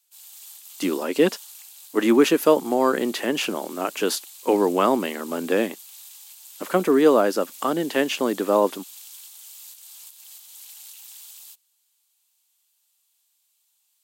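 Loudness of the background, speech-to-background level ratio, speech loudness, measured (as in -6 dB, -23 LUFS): -41.0 LUFS, 19.0 dB, -22.0 LUFS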